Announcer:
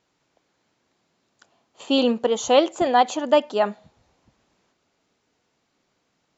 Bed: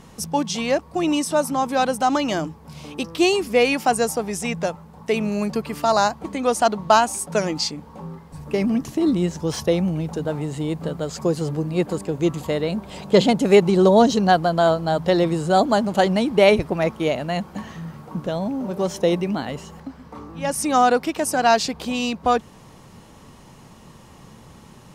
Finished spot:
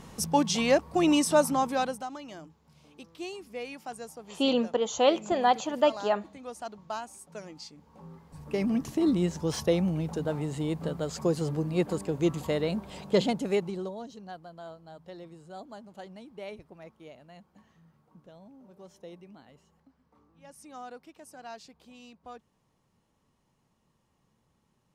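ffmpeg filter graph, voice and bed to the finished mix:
ffmpeg -i stem1.wav -i stem2.wav -filter_complex "[0:a]adelay=2500,volume=-6dB[link_01];[1:a]volume=13.5dB,afade=type=out:start_time=1.4:duration=0.69:silence=0.112202,afade=type=in:start_time=7.7:duration=1.18:silence=0.16788,afade=type=out:start_time=12.7:duration=1.26:silence=0.0841395[link_02];[link_01][link_02]amix=inputs=2:normalize=0" out.wav

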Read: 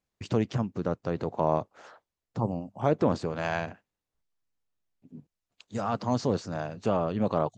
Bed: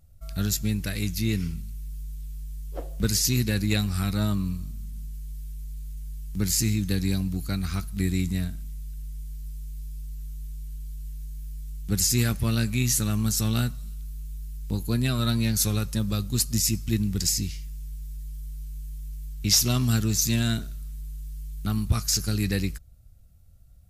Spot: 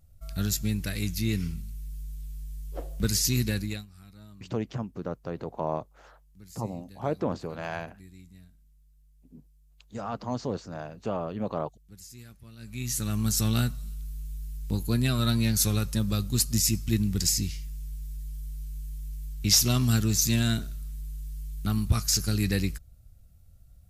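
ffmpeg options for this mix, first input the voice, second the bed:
ffmpeg -i stem1.wav -i stem2.wav -filter_complex "[0:a]adelay=4200,volume=-4.5dB[link_01];[1:a]volume=22dB,afade=type=out:start_time=3.47:duration=0.39:silence=0.0749894,afade=type=in:start_time=12.58:duration=0.78:silence=0.0630957[link_02];[link_01][link_02]amix=inputs=2:normalize=0" out.wav

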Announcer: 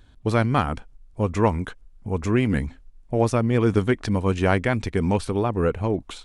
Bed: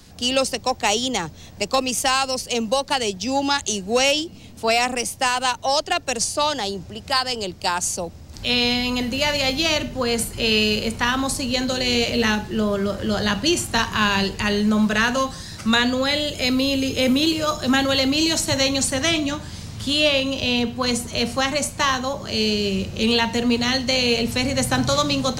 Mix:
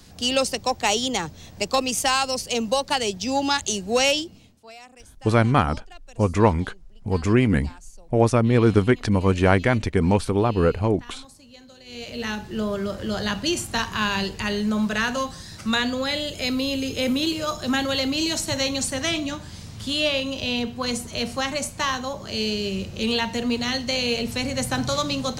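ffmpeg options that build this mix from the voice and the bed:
ffmpeg -i stem1.wav -i stem2.wav -filter_complex "[0:a]adelay=5000,volume=2.5dB[link_01];[1:a]volume=19dB,afade=type=out:start_time=4.11:duration=0.49:silence=0.0668344,afade=type=in:start_time=11.85:duration=0.77:silence=0.0944061[link_02];[link_01][link_02]amix=inputs=2:normalize=0" out.wav

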